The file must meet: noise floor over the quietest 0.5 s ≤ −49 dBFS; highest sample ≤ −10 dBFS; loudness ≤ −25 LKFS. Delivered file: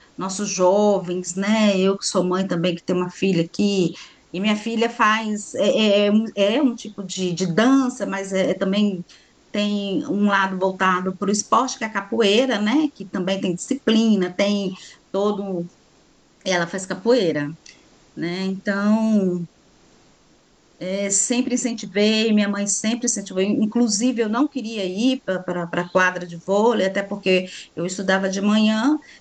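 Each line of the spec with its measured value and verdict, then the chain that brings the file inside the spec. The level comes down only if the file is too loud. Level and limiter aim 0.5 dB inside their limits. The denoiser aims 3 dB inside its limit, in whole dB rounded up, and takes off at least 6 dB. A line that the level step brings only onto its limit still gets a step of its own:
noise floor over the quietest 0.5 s −56 dBFS: in spec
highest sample −5.0 dBFS: out of spec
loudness −20.5 LKFS: out of spec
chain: level −5 dB
brickwall limiter −10.5 dBFS

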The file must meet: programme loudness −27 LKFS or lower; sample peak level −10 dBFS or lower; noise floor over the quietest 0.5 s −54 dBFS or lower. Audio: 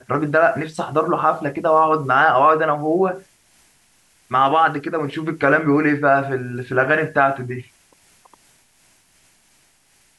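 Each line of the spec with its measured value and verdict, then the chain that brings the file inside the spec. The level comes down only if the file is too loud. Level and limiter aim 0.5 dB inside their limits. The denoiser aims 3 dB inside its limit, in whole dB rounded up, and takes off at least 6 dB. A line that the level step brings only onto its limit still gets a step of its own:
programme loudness −18.0 LKFS: out of spec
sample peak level −4.5 dBFS: out of spec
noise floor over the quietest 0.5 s −58 dBFS: in spec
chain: level −9.5 dB

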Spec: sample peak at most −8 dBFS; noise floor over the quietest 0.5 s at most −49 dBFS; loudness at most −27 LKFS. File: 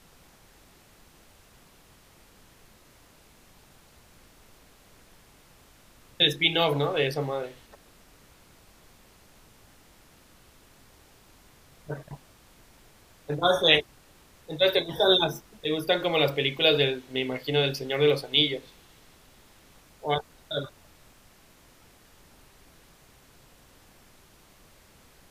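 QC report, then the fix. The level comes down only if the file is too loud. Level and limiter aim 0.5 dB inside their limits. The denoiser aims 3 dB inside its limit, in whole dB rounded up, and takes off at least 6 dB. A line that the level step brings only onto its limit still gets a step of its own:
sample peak −3.5 dBFS: out of spec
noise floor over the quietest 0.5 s −57 dBFS: in spec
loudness −24.5 LKFS: out of spec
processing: level −3 dB
brickwall limiter −8.5 dBFS

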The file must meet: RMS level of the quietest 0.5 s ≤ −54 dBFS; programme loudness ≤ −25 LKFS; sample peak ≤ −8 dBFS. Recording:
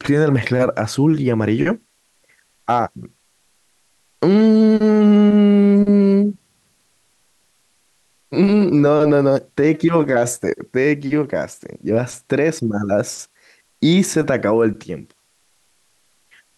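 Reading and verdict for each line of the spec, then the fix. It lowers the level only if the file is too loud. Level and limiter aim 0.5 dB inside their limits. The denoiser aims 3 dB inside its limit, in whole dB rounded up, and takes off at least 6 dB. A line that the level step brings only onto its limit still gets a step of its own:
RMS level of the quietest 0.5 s −61 dBFS: in spec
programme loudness −16.5 LKFS: out of spec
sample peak −5.5 dBFS: out of spec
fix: level −9 dB

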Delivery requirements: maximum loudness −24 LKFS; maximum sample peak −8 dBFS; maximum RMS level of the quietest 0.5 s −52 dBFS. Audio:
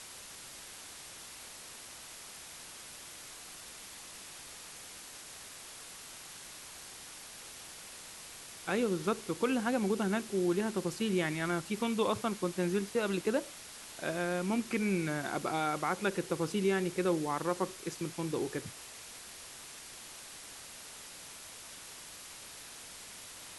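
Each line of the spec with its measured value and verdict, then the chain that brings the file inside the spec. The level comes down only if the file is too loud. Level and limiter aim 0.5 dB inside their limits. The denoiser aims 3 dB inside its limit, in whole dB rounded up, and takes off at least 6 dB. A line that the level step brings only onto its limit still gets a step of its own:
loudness −36.5 LKFS: in spec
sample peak −17.5 dBFS: in spec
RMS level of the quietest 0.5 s −49 dBFS: out of spec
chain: broadband denoise 6 dB, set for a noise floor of −49 dBFS

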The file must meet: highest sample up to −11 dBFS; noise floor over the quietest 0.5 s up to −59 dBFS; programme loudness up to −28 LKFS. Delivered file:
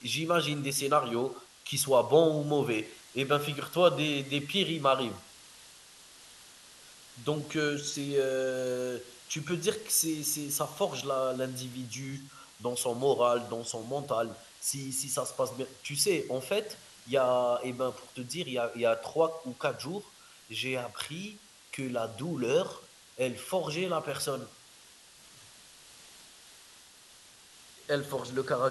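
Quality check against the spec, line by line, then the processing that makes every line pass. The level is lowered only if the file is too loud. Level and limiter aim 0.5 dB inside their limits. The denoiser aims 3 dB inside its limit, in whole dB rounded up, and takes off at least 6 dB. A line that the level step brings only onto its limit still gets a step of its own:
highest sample −10.5 dBFS: out of spec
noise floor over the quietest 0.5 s −56 dBFS: out of spec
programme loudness −31.0 LKFS: in spec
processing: broadband denoise 6 dB, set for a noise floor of −56 dBFS
brickwall limiter −11.5 dBFS

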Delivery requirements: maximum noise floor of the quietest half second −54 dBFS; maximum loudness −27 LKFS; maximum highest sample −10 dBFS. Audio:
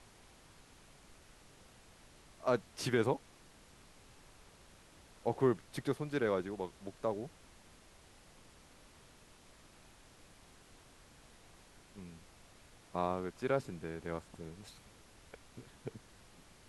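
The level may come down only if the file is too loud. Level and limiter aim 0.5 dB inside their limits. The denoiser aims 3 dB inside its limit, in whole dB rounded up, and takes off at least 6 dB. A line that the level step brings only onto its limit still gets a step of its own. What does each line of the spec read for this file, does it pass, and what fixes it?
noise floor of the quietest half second −60 dBFS: in spec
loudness −37.5 LKFS: in spec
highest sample −18.0 dBFS: in spec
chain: no processing needed

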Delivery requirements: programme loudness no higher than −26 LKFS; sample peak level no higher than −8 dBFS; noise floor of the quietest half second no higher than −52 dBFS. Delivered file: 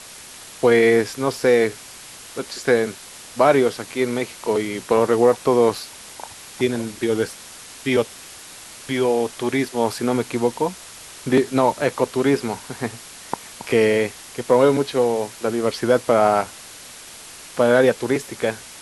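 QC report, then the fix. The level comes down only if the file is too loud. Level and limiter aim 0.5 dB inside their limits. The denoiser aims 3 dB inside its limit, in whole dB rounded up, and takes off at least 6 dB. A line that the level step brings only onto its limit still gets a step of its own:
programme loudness −20.0 LKFS: out of spec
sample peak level −3.5 dBFS: out of spec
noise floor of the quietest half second −40 dBFS: out of spec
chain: broadband denoise 9 dB, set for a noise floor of −40 dBFS
level −6.5 dB

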